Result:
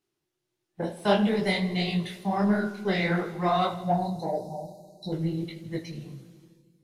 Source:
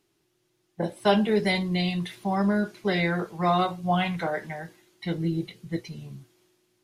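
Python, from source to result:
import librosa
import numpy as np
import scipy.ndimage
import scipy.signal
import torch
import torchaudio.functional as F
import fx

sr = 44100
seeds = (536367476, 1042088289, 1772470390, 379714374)

p1 = fx.spec_erase(x, sr, start_s=3.8, length_s=1.32, low_hz=1000.0, high_hz=3800.0)
p2 = fx.echo_thinned(p1, sr, ms=81, feedback_pct=75, hz=1100.0, wet_db=-18)
p3 = 10.0 ** (-22.5 / 20.0) * np.tanh(p2 / 10.0 ** (-22.5 / 20.0))
p4 = p2 + (p3 * 10.0 ** (-6.5 / 20.0))
p5 = fx.echo_filtered(p4, sr, ms=76, feedback_pct=81, hz=1700.0, wet_db=-15.0)
p6 = fx.noise_reduce_blind(p5, sr, reduce_db=10)
y = fx.detune_double(p6, sr, cents=55)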